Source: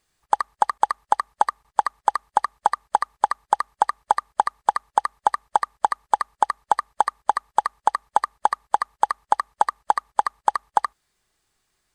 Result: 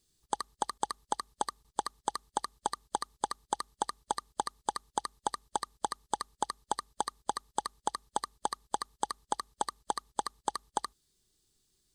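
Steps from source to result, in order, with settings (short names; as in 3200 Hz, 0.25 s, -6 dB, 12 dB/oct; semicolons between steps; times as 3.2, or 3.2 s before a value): band shelf 1200 Hz -14.5 dB 2.5 oct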